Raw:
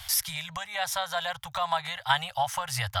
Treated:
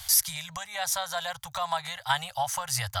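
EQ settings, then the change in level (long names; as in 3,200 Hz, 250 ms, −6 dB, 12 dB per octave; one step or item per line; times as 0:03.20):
high shelf with overshoot 4,100 Hz +6 dB, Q 1.5
notch filter 5,300 Hz, Q 14
−1.5 dB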